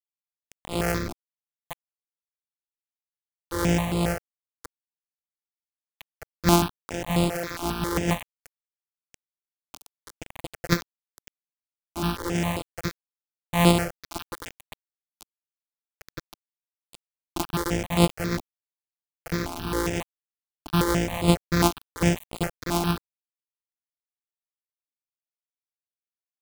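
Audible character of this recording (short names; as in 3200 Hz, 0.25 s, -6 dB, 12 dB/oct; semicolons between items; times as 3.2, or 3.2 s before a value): a buzz of ramps at a fixed pitch in blocks of 256 samples; tremolo triangle 2.5 Hz, depth 60%; a quantiser's noise floor 6-bit, dither none; notches that jump at a steady rate 7.4 Hz 490–5900 Hz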